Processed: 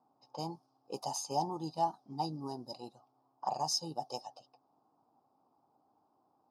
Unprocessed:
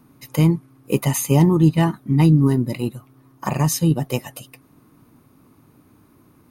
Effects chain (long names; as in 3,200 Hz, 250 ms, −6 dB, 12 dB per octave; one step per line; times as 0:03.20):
low-pass that shuts in the quiet parts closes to 1,800 Hz, open at −16 dBFS
pair of resonant band-passes 2,000 Hz, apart 2.7 octaves